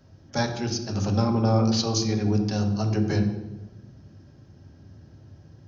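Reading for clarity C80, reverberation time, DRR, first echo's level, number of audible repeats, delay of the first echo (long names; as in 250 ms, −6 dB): 9.5 dB, 1.1 s, 4.0 dB, no echo audible, no echo audible, no echo audible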